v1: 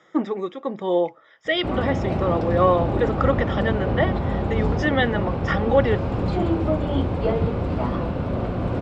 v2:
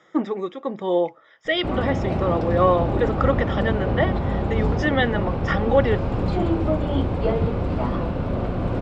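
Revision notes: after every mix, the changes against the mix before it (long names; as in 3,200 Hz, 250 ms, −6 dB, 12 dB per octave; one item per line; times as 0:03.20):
master: remove high-pass filter 44 Hz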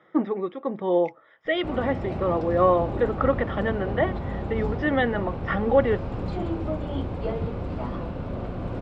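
first voice: add high-frequency loss of the air 370 metres
second voice +5.0 dB
background −7.0 dB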